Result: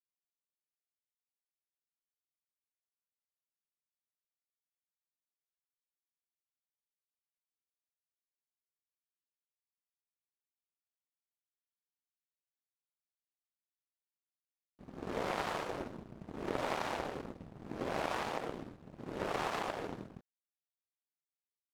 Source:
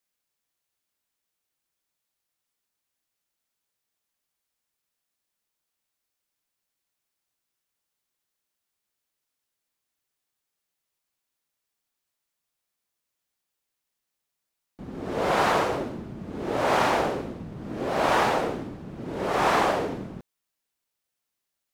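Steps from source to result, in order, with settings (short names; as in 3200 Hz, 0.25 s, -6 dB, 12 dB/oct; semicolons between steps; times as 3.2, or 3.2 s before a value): compressor 12:1, threshold -27 dBFS, peak gain reduction 10 dB; power-law curve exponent 2; gain +1.5 dB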